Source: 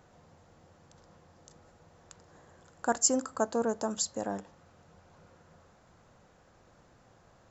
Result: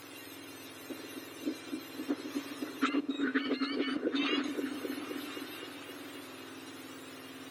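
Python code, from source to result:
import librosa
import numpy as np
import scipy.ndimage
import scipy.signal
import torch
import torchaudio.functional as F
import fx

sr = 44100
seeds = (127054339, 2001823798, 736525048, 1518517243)

y = fx.octave_mirror(x, sr, pivot_hz=1400.0)
y = fx.over_compress(y, sr, threshold_db=-42.0, ratio=-1.0)
y = fx.air_absorb(y, sr, metres=320.0, at=(2.89, 4.44))
y = fx.env_lowpass_down(y, sr, base_hz=640.0, full_db=-26.0)
y = fx.echo_opening(y, sr, ms=260, hz=400, octaves=1, feedback_pct=70, wet_db=-3)
y = y * librosa.db_to_amplitude(8.0)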